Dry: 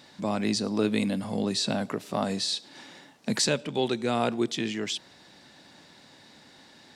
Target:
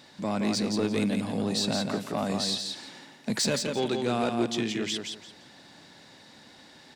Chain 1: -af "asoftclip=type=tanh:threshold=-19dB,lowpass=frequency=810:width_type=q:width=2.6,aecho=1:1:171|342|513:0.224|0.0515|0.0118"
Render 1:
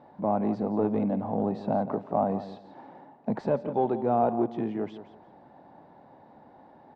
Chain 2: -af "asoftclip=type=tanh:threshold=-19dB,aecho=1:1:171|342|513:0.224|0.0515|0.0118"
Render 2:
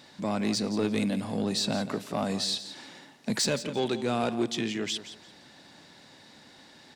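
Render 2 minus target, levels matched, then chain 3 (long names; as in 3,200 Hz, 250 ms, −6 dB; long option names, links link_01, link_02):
echo-to-direct −8 dB
-af "asoftclip=type=tanh:threshold=-19dB,aecho=1:1:171|342|513:0.562|0.129|0.0297"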